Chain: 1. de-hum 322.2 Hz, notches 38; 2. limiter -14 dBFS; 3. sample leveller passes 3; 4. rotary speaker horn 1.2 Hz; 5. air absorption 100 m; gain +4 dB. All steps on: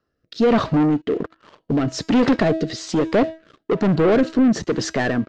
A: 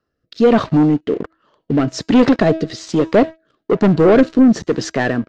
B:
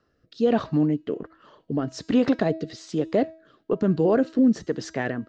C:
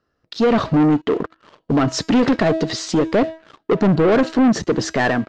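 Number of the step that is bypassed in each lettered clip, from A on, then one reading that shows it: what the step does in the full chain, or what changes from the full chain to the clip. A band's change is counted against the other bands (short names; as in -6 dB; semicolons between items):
2, momentary loudness spread change +1 LU; 3, 4 kHz band -4.5 dB; 4, crest factor change -4.0 dB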